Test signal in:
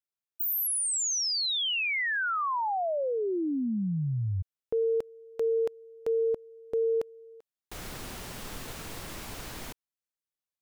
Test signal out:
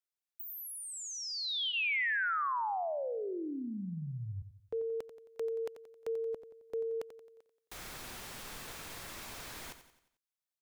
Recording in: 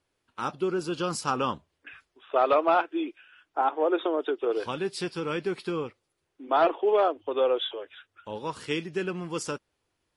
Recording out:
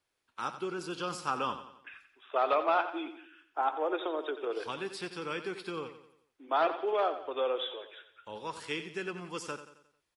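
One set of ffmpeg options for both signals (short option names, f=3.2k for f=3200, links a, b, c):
-filter_complex "[0:a]tiltshelf=f=630:g=-4.5,bandreject=f=2.9k:w=27,acrossover=split=450|3400[a][b][c];[c]acompressor=threshold=-38dB:ratio=6:attack=16:release=280:knee=6[d];[a][b][d]amix=inputs=3:normalize=0,aecho=1:1:89|178|267|356|445:0.266|0.122|0.0563|0.0259|0.0119,volume=-6.5dB"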